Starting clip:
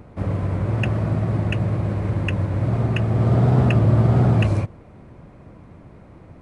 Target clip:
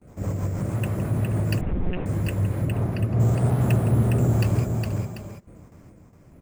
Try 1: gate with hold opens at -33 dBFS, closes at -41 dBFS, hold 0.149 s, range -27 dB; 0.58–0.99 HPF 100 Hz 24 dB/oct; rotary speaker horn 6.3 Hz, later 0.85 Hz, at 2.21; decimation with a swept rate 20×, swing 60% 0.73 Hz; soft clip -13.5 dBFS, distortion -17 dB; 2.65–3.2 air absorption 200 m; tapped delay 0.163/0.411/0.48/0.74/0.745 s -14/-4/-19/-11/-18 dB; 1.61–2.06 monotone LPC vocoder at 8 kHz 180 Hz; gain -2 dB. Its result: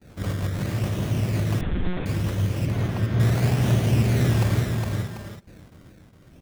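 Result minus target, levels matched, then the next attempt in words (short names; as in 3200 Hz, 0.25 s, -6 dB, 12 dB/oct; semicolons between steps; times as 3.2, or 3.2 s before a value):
decimation with a swept rate: distortion +11 dB
gate with hold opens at -33 dBFS, closes at -41 dBFS, hold 0.149 s, range -27 dB; 0.58–0.99 HPF 100 Hz 24 dB/oct; rotary speaker horn 6.3 Hz, later 0.85 Hz, at 2.21; decimation with a swept rate 5×, swing 60% 0.73 Hz; soft clip -13.5 dBFS, distortion -17 dB; 2.65–3.2 air absorption 200 m; tapped delay 0.163/0.411/0.48/0.74/0.745 s -14/-4/-19/-11/-18 dB; 1.61–2.06 monotone LPC vocoder at 8 kHz 180 Hz; gain -2 dB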